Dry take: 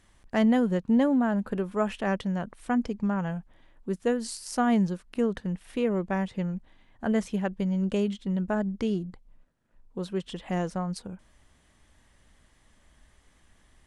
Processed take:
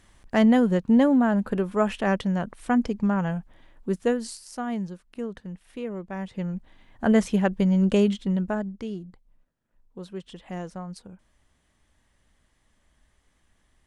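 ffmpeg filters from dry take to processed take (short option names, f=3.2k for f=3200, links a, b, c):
-af "volume=17dB,afade=t=out:st=3.98:d=0.5:silence=0.298538,afade=t=in:st=6.12:d=0.98:silence=0.223872,afade=t=out:st=8.09:d=0.65:silence=0.251189"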